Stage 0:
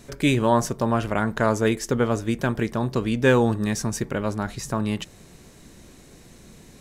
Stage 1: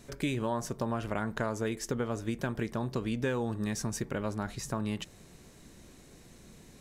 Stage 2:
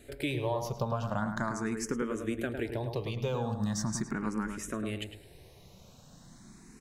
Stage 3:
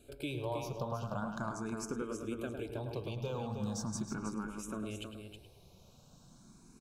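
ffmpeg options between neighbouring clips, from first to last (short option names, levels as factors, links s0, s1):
-af "acompressor=threshold=0.0794:ratio=6,volume=0.501"
-filter_complex "[0:a]asplit=2[s0][s1];[s1]adelay=106,lowpass=f=1800:p=1,volume=0.531,asplit=2[s2][s3];[s3]adelay=106,lowpass=f=1800:p=1,volume=0.33,asplit=2[s4][s5];[s5]adelay=106,lowpass=f=1800:p=1,volume=0.33,asplit=2[s6][s7];[s7]adelay=106,lowpass=f=1800:p=1,volume=0.33[s8];[s2][s4][s6][s8]amix=inputs=4:normalize=0[s9];[s0][s9]amix=inputs=2:normalize=0,asplit=2[s10][s11];[s11]afreqshift=0.4[s12];[s10][s12]amix=inputs=2:normalize=1,volume=1.26"
-af "asuperstop=centerf=1900:order=4:qfactor=2.6,aecho=1:1:318:0.398,volume=0.501"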